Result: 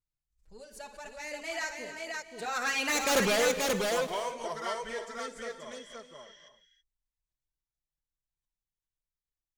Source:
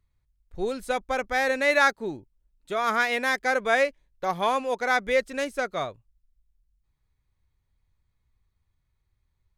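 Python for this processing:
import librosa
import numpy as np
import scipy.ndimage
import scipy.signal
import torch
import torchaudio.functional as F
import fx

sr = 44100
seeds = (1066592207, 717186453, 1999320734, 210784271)

p1 = fx.doppler_pass(x, sr, speed_mps=38, closest_m=3.1, pass_at_s=3.19)
p2 = fx.peak_eq(p1, sr, hz=6900.0, db=12.5, octaves=1.2)
p3 = fx.env_flanger(p2, sr, rest_ms=6.4, full_db=-32.0)
p4 = fx.fold_sine(p3, sr, drive_db=18, ceiling_db=-16.5)
p5 = p3 + F.gain(torch.from_numpy(p4), -11.0).numpy()
p6 = fx.spec_repair(p5, sr, seeds[0], start_s=5.67, length_s=0.26, low_hz=1400.0, high_hz=8200.0, source='before')
p7 = fx.echo_multitap(p6, sr, ms=(57, 530), db=(-10.0, -3.0))
p8 = fx.rev_gated(p7, sr, seeds[1], gate_ms=350, shape='rising', drr_db=11.5)
p9 = fx.vibrato(p8, sr, rate_hz=0.76, depth_cents=13.0)
y = fx.pre_swell(p9, sr, db_per_s=150.0)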